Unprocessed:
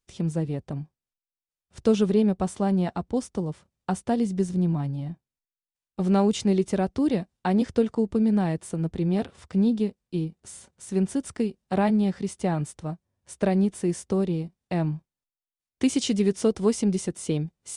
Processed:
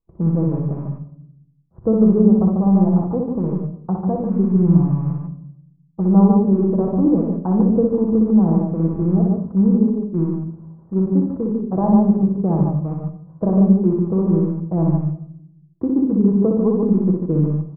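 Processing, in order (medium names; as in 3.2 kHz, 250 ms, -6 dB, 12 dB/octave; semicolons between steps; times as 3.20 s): rattle on loud lows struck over -33 dBFS, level -20 dBFS; elliptic low-pass 1.1 kHz, stop band 70 dB; bass shelf 390 Hz +6.5 dB; multi-tap echo 61/143/148 ms -3/-8.5/-5 dB; on a send at -5 dB: reverberation RT60 0.75 s, pre-delay 6 ms; on the sum: trim -1 dB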